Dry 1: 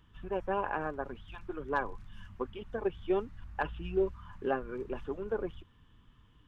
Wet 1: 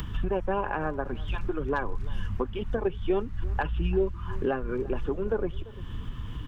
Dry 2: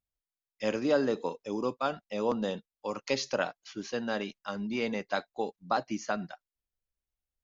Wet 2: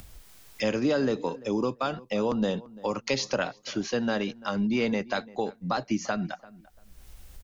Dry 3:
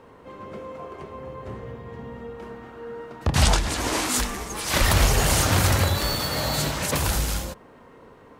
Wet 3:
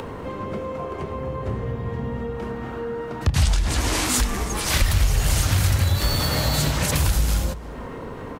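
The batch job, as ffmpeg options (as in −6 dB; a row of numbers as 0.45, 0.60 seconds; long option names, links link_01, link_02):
-filter_complex "[0:a]acrossover=split=130|1600|6500[link_01][link_02][link_03][link_04];[link_02]alimiter=limit=-23dB:level=0:latency=1:release=136[link_05];[link_01][link_05][link_03][link_04]amix=inputs=4:normalize=0,acompressor=mode=upward:threshold=-29dB:ratio=2.5,lowshelf=frequency=190:gain=8,asplit=2[link_06][link_07];[link_07]adelay=342,lowpass=frequency=2000:poles=1,volume=-20dB,asplit=2[link_08][link_09];[link_09]adelay=342,lowpass=frequency=2000:poles=1,volume=0.22[link_10];[link_06][link_08][link_10]amix=inputs=3:normalize=0,acompressor=threshold=-20dB:ratio=4,volume=3.5dB"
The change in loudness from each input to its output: +5.0, +3.5, −1.0 LU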